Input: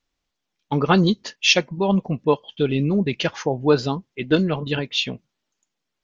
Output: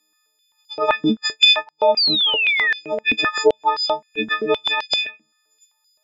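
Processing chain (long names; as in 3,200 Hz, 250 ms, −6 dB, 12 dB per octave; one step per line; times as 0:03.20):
every partial snapped to a pitch grid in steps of 6 semitones
high-shelf EQ 5,100 Hz +7 dB
treble cut that deepens with the level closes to 2,100 Hz, closed at −11.5 dBFS
sound drawn into the spectrogram fall, 0:01.97–0:02.74, 1,700–4,900 Hz −13 dBFS
downward compressor, threshold −17 dBFS, peak gain reduction 9 dB
high-pass on a step sequencer 7.7 Hz 270–4,800 Hz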